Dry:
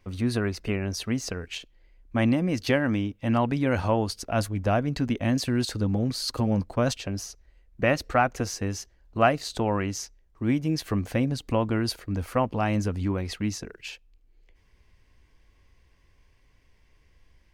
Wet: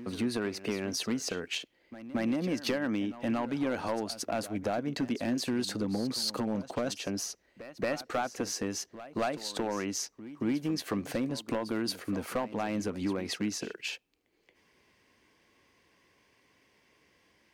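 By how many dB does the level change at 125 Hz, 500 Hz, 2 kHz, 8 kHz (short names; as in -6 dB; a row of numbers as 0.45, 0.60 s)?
-14.0, -6.0, -7.0, -1.0 dB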